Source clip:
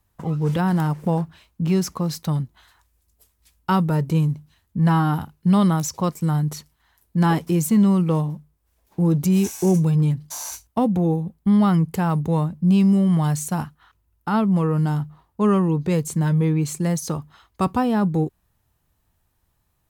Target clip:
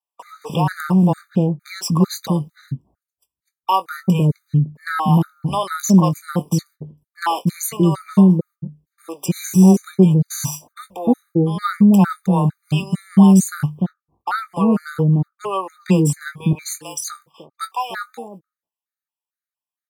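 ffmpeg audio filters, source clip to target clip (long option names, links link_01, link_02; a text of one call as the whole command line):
ffmpeg -i in.wav -filter_complex "[0:a]asetnsamples=nb_out_samples=441:pad=0,asendcmd='16.23 highpass f 1000',highpass=130,agate=range=-24dB:threshold=-53dB:ratio=16:detection=peak,asplit=2[link_01][link_02];[link_02]adelay=21,volume=-11.5dB[link_03];[link_01][link_03]amix=inputs=2:normalize=0,acrossover=split=530[link_04][link_05];[link_04]adelay=300[link_06];[link_06][link_05]amix=inputs=2:normalize=0,afftfilt=real='re*gt(sin(2*PI*2.2*pts/sr)*(1-2*mod(floor(b*sr/1024/1200),2)),0)':imag='im*gt(sin(2*PI*2.2*pts/sr)*(1-2*mod(floor(b*sr/1024/1200),2)),0)':win_size=1024:overlap=0.75,volume=7.5dB" out.wav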